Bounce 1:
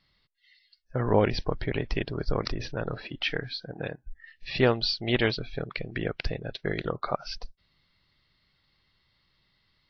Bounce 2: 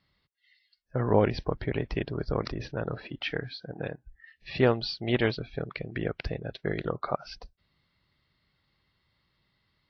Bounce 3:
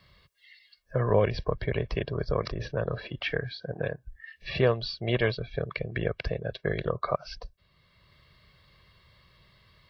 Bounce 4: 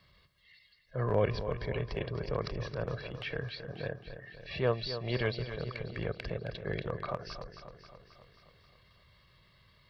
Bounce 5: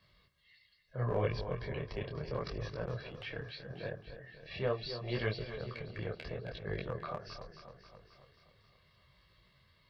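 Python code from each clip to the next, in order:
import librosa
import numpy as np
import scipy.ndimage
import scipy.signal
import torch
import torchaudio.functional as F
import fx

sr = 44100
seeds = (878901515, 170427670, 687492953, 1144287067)

y1 = scipy.signal.sosfilt(scipy.signal.butter(2, 43.0, 'highpass', fs=sr, output='sos'), x)
y1 = fx.high_shelf(y1, sr, hz=2700.0, db=-8.5)
y2 = y1 + 0.58 * np.pad(y1, (int(1.8 * sr / 1000.0), 0))[:len(y1)]
y2 = fx.band_squash(y2, sr, depth_pct=40)
y3 = fx.transient(y2, sr, attack_db=-8, sustain_db=-1)
y3 = fx.echo_feedback(y3, sr, ms=268, feedback_pct=59, wet_db=-10.5)
y3 = F.gain(torch.from_numpy(y3), -3.5).numpy()
y4 = fx.detune_double(y3, sr, cents=26)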